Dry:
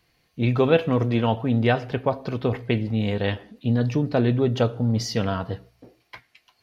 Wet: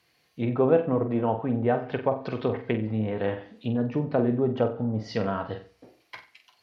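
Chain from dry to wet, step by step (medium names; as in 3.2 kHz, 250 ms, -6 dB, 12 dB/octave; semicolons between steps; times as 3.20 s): low-pass that closes with the level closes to 950 Hz, closed at -18 dBFS; high-pass 71 Hz; bass shelf 260 Hz -8 dB; flutter echo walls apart 7.9 m, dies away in 0.33 s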